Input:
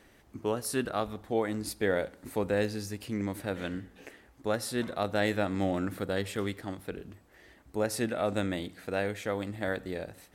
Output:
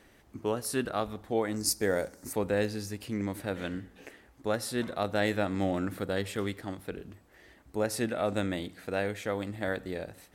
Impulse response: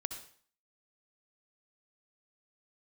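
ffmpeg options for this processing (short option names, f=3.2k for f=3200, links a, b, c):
-filter_complex "[0:a]asettb=1/sr,asplit=3[a][b][c];[a]atrim=end=1.564[d];[b]atrim=start=1.56:end=2.33,asetpts=PTS-STARTPTS,afade=t=in:d=0.004:c=qsin,afade=t=out:st=0.766:d=0.004:c=qsin,highshelf=f=4.4k:t=q:w=3:g=8.5[e];[c]atrim=start=2.326[f];[d][e]acrossfade=d=0.004:c1=hsin:c2=qsin[g];[g][f]acrossfade=d=0.004:c1=qsin:c2=hsin"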